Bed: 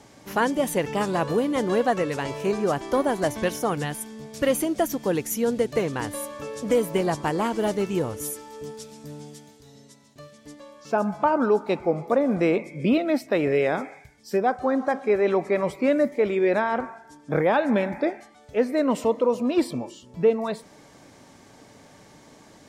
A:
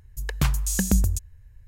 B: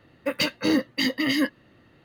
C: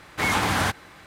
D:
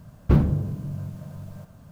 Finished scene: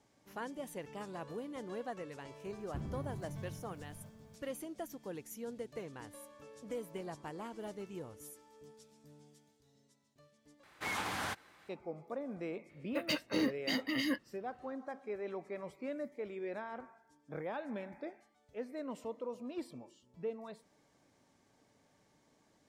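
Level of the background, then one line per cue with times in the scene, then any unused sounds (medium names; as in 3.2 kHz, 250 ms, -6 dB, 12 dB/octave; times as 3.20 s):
bed -20 dB
2.45 s: add D -13 dB + compression, threshold -25 dBFS
10.63 s: replace with C -14 dB + bass shelf 170 Hz -10 dB
12.69 s: add B -11 dB
not used: A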